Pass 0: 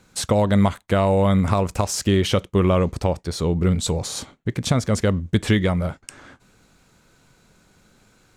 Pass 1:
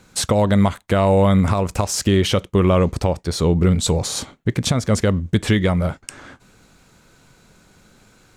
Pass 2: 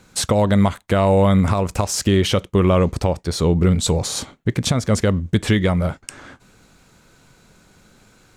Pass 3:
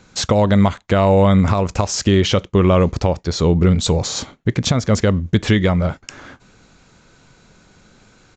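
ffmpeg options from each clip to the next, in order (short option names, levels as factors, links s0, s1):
-af "alimiter=limit=0.266:level=0:latency=1:release=272,volume=1.68"
-af anull
-af "aresample=16000,aresample=44100,volume=1.26"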